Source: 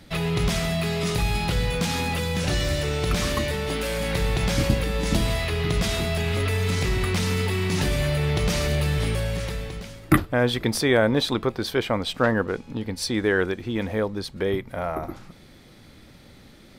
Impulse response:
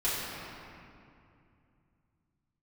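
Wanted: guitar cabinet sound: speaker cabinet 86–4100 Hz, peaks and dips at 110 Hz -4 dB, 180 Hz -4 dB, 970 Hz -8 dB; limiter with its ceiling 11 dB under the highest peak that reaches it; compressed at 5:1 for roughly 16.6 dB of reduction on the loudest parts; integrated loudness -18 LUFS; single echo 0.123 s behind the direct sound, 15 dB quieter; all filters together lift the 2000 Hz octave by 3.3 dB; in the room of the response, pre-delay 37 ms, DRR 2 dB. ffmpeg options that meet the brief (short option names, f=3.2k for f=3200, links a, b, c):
-filter_complex "[0:a]equalizer=f=2k:t=o:g=4.5,acompressor=threshold=-31dB:ratio=5,alimiter=level_in=1.5dB:limit=-24dB:level=0:latency=1,volume=-1.5dB,aecho=1:1:123:0.178,asplit=2[a][b];[1:a]atrim=start_sample=2205,adelay=37[c];[b][c]afir=irnorm=-1:irlink=0,volume=-11.5dB[d];[a][d]amix=inputs=2:normalize=0,highpass=86,equalizer=f=110:t=q:w=4:g=-4,equalizer=f=180:t=q:w=4:g=-4,equalizer=f=970:t=q:w=4:g=-8,lowpass=f=4.1k:w=0.5412,lowpass=f=4.1k:w=1.3066,volume=16.5dB"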